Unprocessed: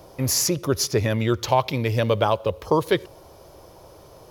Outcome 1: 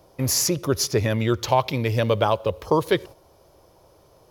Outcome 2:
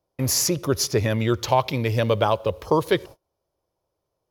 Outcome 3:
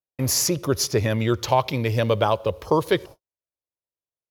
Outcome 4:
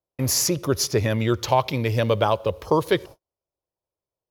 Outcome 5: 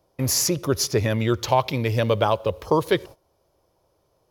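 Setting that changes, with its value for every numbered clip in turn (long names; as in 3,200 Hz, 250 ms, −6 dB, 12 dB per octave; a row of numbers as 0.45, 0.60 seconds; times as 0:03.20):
noise gate, range: −8, −32, −57, −45, −20 decibels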